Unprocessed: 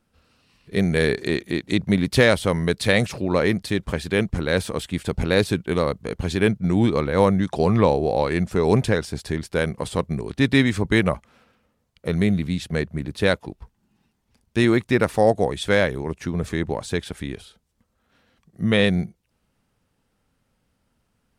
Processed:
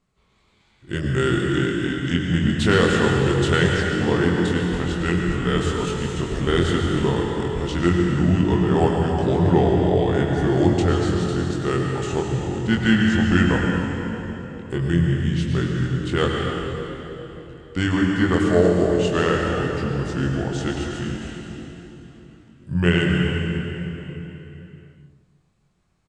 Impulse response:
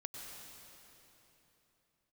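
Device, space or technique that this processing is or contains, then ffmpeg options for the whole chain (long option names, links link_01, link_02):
slowed and reverbed: -filter_complex "[0:a]asetrate=36162,aresample=44100[link_01];[1:a]atrim=start_sample=2205[link_02];[link_01][link_02]afir=irnorm=-1:irlink=0,lowpass=frequency=9400:width=0.5412,lowpass=frequency=9400:width=1.3066,asplit=2[link_03][link_04];[link_04]adelay=23,volume=-4.5dB[link_05];[link_03][link_05]amix=inputs=2:normalize=0,asplit=2[link_06][link_07];[link_07]adelay=307,lowpass=frequency=960:poles=1,volume=-15.5dB,asplit=2[link_08][link_09];[link_09]adelay=307,lowpass=frequency=960:poles=1,volume=0.38,asplit=2[link_10][link_11];[link_11]adelay=307,lowpass=frequency=960:poles=1,volume=0.38[link_12];[link_06][link_08][link_10][link_12]amix=inputs=4:normalize=0,bandreject=frequency=80.35:width_type=h:width=4,bandreject=frequency=160.7:width_type=h:width=4,bandreject=frequency=241.05:width_type=h:width=4,bandreject=frequency=321.4:width_type=h:width=4,bandreject=frequency=401.75:width_type=h:width=4,bandreject=frequency=482.1:width_type=h:width=4,bandreject=frequency=562.45:width_type=h:width=4,bandreject=frequency=642.8:width_type=h:width=4,bandreject=frequency=723.15:width_type=h:width=4,bandreject=frequency=803.5:width_type=h:width=4,bandreject=frequency=883.85:width_type=h:width=4,bandreject=frequency=964.2:width_type=h:width=4,bandreject=frequency=1044.55:width_type=h:width=4,bandreject=frequency=1124.9:width_type=h:width=4,bandreject=frequency=1205.25:width_type=h:width=4,bandreject=frequency=1285.6:width_type=h:width=4,bandreject=frequency=1365.95:width_type=h:width=4,bandreject=frequency=1446.3:width_type=h:width=4,bandreject=frequency=1526.65:width_type=h:width=4,bandreject=frequency=1607:width_type=h:width=4,bandreject=frequency=1687.35:width_type=h:width=4,bandreject=frequency=1767.7:width_type=h:width=4,bandreject=frequency=1848.05:width_type=h:width=4,bandreject=frequency=1928.4:width_type=h:width=4,bandreject=frequency=2008.75:width_type=h:width=4,bandreject=frequency=2089.1:width_type=h:width=4,bandreject=frequency=2169.45:width_type=h:width=4,bandreject=frequency=2249.8:width_type=h:width=4,bandreject=frequency=2330.15:width_type=h:width=4,bandreject=frequency=2410.5:width_type=h:width=4,bandreject=frequency=2490.85:width_type=h:width=4,volume=2dB"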